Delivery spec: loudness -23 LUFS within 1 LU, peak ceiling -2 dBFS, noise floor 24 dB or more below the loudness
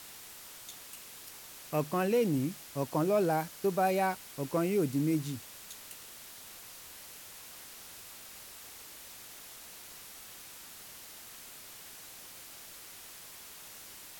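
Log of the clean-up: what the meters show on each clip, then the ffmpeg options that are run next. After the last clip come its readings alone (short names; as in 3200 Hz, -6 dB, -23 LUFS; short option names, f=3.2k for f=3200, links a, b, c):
noise floor -50 dBFS; noise floor target -58 dBFS; loudness -33.5 LUFS; peak -17.5 dBFS; loudness target -23.0 LUFS
-> -af "afftdn=nr=8:nf=-50"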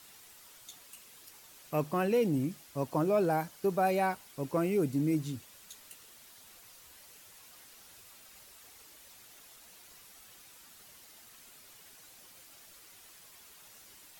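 noise floor -56 dBFS; loudness -31.5 LUFS; peak -17.5 dBFS; loudness target -23.0 LUFS
-> -af "volume=8.5dB"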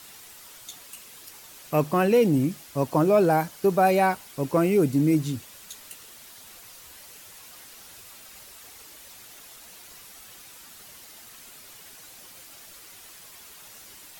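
loudness -23.0 LUFS; peak -9.0 dBFS; noise floor -47 dBFS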